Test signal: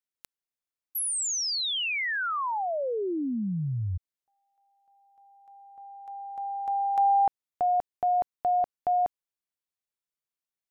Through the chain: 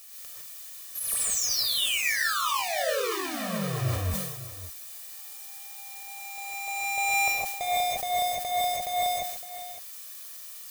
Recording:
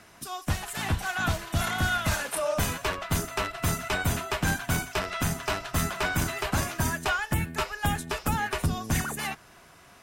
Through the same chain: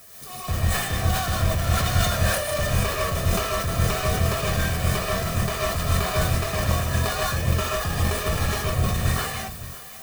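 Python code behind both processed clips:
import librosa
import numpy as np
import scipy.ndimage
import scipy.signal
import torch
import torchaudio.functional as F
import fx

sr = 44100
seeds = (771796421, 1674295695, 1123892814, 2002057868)

p1 = fx.halfwave_hold(x, sr)
p2 = fx.hpss(p1, sr, part='harmonic', gain_db=-3)
p3 = fx.dmg_noise_colour(p2, sr, seeds[0], colour='blue', level_db=-42.0)
p4 = p3 + 0.59 * np.pad(p3, (int(1.7 * sr / 1000.0), 0))[:len(p3)]
p5 = p4 + fx.echo_single(p4, sr, ms=560, db=-14.5, dry=0)
p6 = fx.rev_gated(p5, sr, seeds[1], gate_ms=180, shape='rising', drr_db=-4.5)
p7 = fx.sustainer(p6, sr, db_per_s=47.0)
y = p7 * librosa.db_to_amplitude(-8.0)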